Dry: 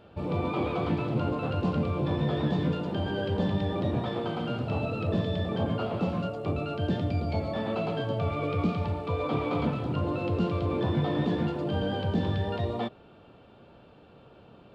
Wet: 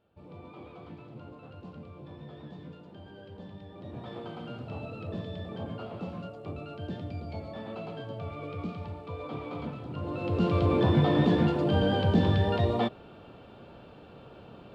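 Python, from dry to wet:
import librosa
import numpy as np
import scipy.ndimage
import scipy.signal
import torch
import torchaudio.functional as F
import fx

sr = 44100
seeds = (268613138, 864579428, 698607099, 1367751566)

y = fx.gain(x, sr, db=fx.line((3.72, -18.0), (4.13, -9.0), (9.89, -9.0), (10.58, 4.0)))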